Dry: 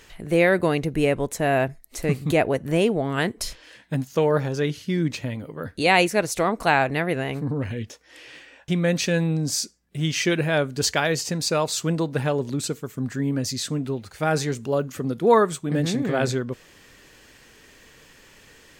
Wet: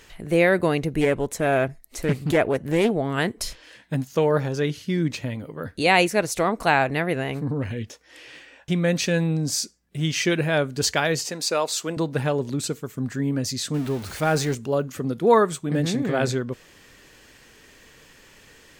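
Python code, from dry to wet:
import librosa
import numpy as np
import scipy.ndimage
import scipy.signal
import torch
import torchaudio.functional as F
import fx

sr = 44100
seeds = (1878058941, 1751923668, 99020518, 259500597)

y = fx.doppler_dist(x, sr, depth_ms=0.45, at=(1.01, 2.91))
y = fx.highpass(y, sr, hz=320.0, slope=12, at=(11.26, 11.97))
y = fx.zero_step(y, sr, step_db=-32.5, at=(13.74, 14.55))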